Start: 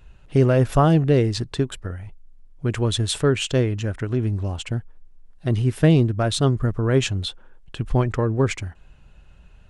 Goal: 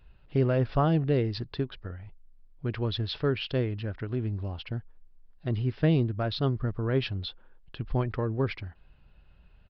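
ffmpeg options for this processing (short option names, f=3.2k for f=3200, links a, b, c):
-af "aresample=11025,aresample=44100,volume=-8dB"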